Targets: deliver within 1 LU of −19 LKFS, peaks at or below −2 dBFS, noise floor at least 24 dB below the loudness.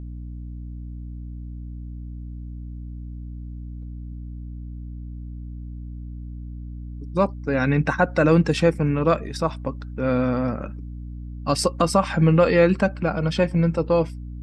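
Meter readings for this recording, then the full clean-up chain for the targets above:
mains hum 60 Hz; hum harmonics up to 300 Hz; level of the hum −32 dBFS; integrated loudness −21.5 LKFS; sample peak −5.0 dBFS; target loudness −19.0 LKFS
→ hum removal 60 Hz, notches 5
level +2.5 dB

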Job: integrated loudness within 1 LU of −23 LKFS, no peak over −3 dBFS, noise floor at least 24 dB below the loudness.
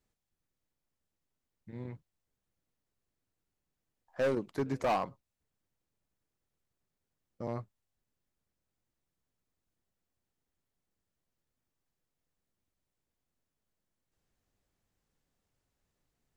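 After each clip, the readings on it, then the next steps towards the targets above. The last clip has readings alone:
share of clipped samples 0.4%; peaks flattened at −25.5 dBFS; integrated loudness −35.5 LKFS; sample peak −25.5 dBFS; target loudness −23.0 LKFS
→ clipped peaks rebuilt −25.5 dBFS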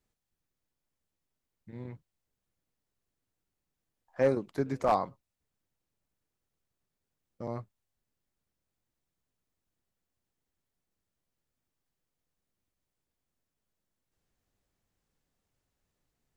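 share of clipped samples 0.0%; integrated loudness −31.5 LKFS; sample peak −16.5 dBFS; target loudness −23.0 LKFS
→ level +8.5 dB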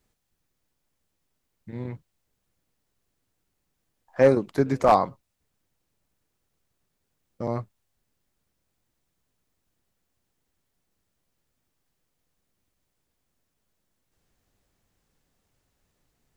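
integrated loudness −23.0 LKFS; sample peak −8.0 dBFS; background noise floor −78 dBFS

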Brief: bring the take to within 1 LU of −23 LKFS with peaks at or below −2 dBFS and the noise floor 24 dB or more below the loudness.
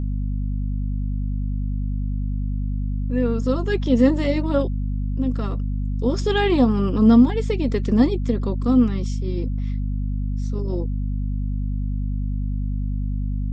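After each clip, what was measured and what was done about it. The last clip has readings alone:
mains hum 50 Hz; hum harmonics up to 250 Hz; level of the hum −21 dBFS; integrated loudness −22.5 LKFS; sample peak −4.0 dBFS; target loudness −23.0 LKFS
→ hum removal 50 Hz, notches 5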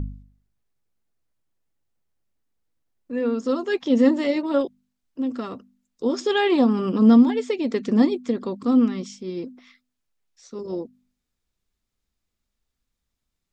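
mains hum none found; integrated loudness −21.5 LKFS; sample peak −6.0 dBFS; target loudness −23.0 LKFS
→ level −1.5 dB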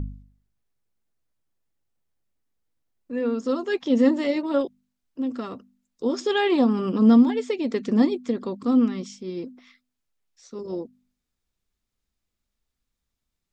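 integrated loudness −23.0 LKFS; sample peak −7.5 dBFS; background noise floor −82 dBFS

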